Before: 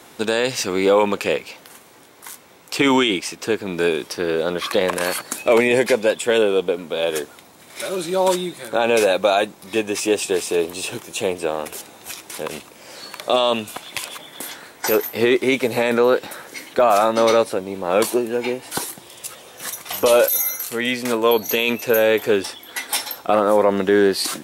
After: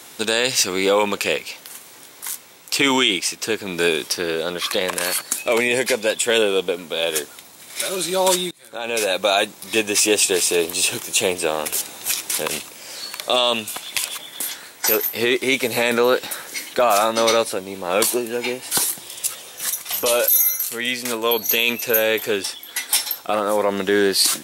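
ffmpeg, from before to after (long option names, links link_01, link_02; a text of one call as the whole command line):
ffmpeg -i in.wav -filter_complex "[0:a]asplit=2[link_01][link_02];[link_01]atrim=end=8.51,asetpts=PTS-STARTPTS,afade=type=out:start_time=8.506:duration=0.004:curve=hsin:silence=0.0630957[link_03];[link_02]atrim=start=8.51,asetpts=PTS-STARTPTS,afade=type=in:duration=1.29:silence=0.0630957[link_04];[link_03][link_04]concat=n=2:v=0:a=1,highshelf=frequency=2100:gain=11.5,dynaudnorm=framelen=140:gausssize=9:maxgain=11.5dB,volume=-3dB" out.wav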